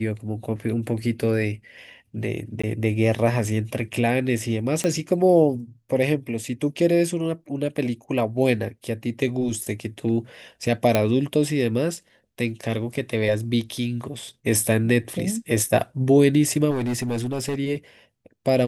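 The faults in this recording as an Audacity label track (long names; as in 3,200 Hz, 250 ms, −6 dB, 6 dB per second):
2.620000	2.630000	drop-out 15 ms
4.840000	4.840000	click −11 dBFS
10.950000	10.950000	click −5 dBFS
16.700000	17.590000	clipping −21.5 dBFS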